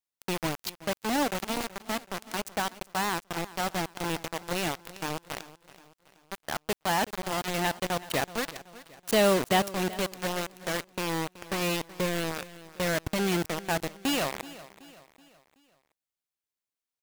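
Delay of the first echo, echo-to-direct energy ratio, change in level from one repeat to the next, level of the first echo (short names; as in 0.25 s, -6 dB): 0.377 s, -16.5 dB, -7.0 dB, -17.5 dB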